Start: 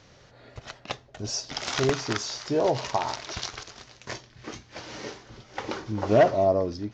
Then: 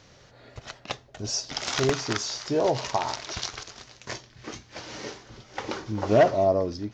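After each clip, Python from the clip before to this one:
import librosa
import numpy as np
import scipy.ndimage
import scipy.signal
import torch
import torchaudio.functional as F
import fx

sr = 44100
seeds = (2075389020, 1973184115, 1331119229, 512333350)

y = fx.high_shelf(x, sr, hz=6500.0, db=5.0)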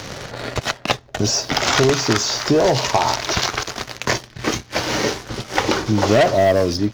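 y = fx.leveller(x, sr, passes=2)
y = fx.band_squash(y, sr, depth_pct=70)
y = y * librosa.db_to_amplitude(4.5)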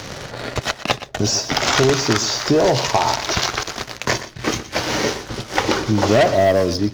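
y = x + 10.0 ** (-14.0 / 20.0) * np.pad(x, (int(121 * sr / 1000.0), 0))[:len(x)]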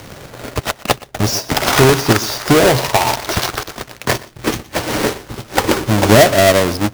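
y = fx.halfwave_hold(x, sr)
y = fx.upward_expand(y, sr, threshold_db=-27.0, expansion=1.5)
y = y * librosa.db_to_amplitude(2.0)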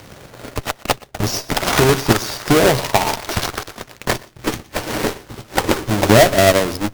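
y = fx.cheby_harmonics(x, sr, harmonics=(4, 6, 7), levels_db=(-14, -12, -28), full_scale_db=-1.0)
y = np.repeat(y[::2], 2)[:len(y)]
y = y * librosa.db_to_amplitude(-2.5)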